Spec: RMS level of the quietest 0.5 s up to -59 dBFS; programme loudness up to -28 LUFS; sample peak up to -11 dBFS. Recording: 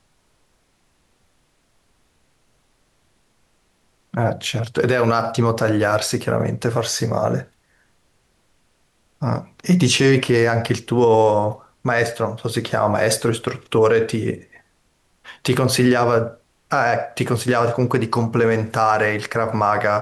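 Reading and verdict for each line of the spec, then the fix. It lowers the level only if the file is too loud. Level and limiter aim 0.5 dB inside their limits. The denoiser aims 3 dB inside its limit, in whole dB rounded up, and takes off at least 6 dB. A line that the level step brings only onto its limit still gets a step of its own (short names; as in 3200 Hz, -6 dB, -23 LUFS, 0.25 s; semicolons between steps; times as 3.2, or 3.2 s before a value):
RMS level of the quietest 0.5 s -63 dBFS: OK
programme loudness -19.5 LUFS: fail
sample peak -6.0 dBFS: fail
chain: gain -9 dB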